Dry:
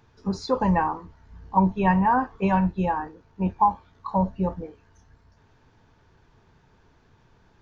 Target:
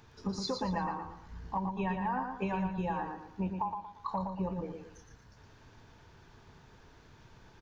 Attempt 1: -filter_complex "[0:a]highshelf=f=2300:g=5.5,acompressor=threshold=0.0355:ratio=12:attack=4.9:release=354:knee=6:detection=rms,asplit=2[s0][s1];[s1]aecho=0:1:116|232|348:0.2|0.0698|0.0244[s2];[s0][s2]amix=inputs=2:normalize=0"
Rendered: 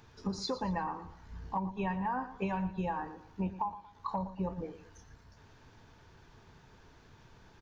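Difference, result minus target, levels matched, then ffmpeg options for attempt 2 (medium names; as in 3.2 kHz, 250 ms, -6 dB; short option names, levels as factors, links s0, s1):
echo-to-direct -8.5 dB
-filter_complex "[0:a]highshelf=f=2300:g=5.5,acompressor=threshold=0.0355:ratio=12:attack=4.9:release=354:knee=6:detection=rms,asplit=2[s0][s1];[s1]aecho=0:1:116|232|348|464:0.531|0.186|0.065|0.0228[s2];[s0][s2]amix=inputs=2:normalize=0"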